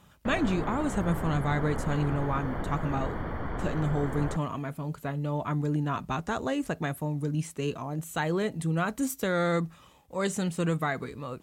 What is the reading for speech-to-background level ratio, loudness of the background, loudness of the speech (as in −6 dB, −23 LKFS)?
5.0 dB, −35.5 LKFS, −30.5 LKFS